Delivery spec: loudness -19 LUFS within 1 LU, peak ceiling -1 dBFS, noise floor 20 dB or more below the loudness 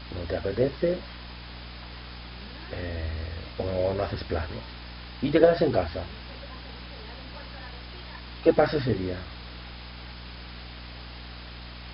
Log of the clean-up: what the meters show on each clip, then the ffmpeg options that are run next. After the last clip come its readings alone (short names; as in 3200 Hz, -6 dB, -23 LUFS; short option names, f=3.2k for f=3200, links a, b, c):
hum 60 Hz; harmonics up to 300 Hz; hum level -40 dBFS; noise floor -42 dBFS; noise floor target -48 dBFS; loudness -27.5 LUFS; peak -5.0 dBFS; loudness target -19.0 LUFS
-> -af "bandreject=f=60:t=h:w=4,bandreject=f=120:t=h:w=4,bandreject=f=180:t=h:w=4,bandreject=f=240:t=h:w=4,bandreject=f=300:t=h:w=4"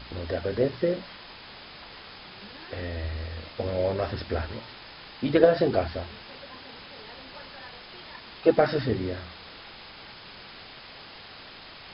hum none; noise floor -46 dBFS; noise floor target -48 dBFS
-> -af "afftdn=nr=6:nf=-46"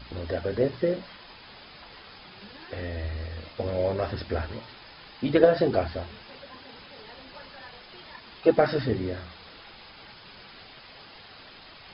noise floor -49 dBFS; loudness -27.5 LUFS; peak -4.5 dBFS; loudness target -19.0 LUFS
-> -af "volume=8.5dB,alimiter=limit=-1dB:level=0:latency=1"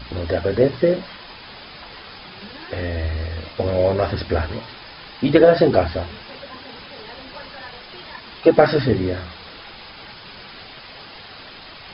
loudness -19.5 LUFS; peak -1.0 dBFS; noise floor -40 dBFS